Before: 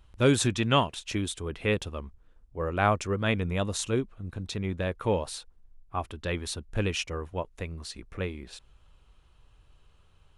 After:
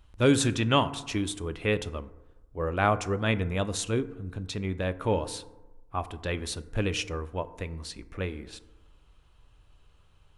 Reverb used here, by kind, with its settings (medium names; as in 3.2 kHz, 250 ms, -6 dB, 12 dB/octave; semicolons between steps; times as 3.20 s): FDN reverb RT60 1.1 s, low-frequency decay 1×, high-frequency decay 0.35×, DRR 12.5 dB